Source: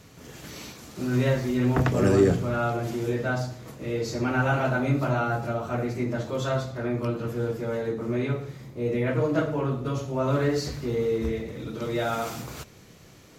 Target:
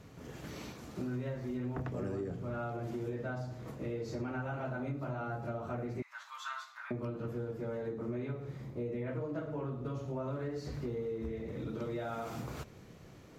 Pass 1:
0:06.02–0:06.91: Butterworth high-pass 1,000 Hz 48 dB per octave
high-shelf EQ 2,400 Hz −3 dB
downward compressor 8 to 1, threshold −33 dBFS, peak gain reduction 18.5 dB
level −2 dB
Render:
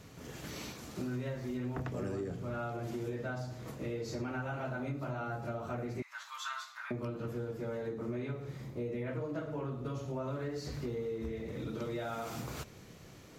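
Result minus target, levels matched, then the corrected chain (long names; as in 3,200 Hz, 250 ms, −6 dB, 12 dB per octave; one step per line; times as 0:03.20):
4,000 Hz band +5.0 dB
0:06.02–0:06.91: Butterworth high-pass 1,000 Hz 48 dB per octave
high-shelf EQ 2,400 Hz −10.5 dB
downward compressor 8 to 1, threshold −33 dBFS, peak gain reduction 18.5 dB
level −2 dB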